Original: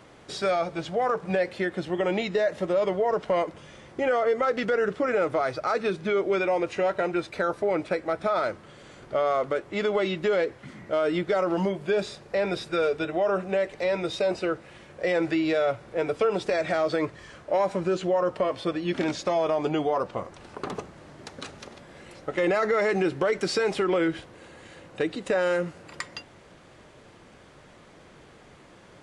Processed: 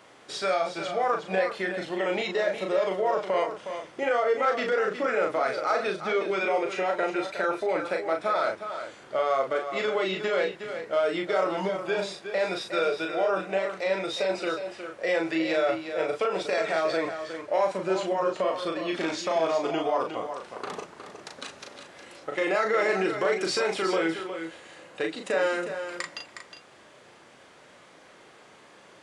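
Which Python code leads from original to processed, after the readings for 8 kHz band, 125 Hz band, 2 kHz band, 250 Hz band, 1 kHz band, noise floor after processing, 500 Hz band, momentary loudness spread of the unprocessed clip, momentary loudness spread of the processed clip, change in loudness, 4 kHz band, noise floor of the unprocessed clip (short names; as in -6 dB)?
n/a, -8.0 dB, +1.5 dB, -3.5 dB, +1.0 dB, -53 dBFS, -1.5 dB, 12 LU, 11 LU, -1.0 dB, +2.0 dB, -52 dBFS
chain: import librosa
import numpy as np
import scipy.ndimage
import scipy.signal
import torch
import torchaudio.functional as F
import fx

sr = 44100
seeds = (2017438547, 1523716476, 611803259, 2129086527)

y = fx.highpass(x, sr, hz=520.0, slope=6)
y = fx.doubler(y, sr, ms=37.0, db=-4)
y = y + 10.0 ** (-9.0 / 20.0) * np.pad(y, (int(363 * sr / 1000.0), 0))[:len(y)]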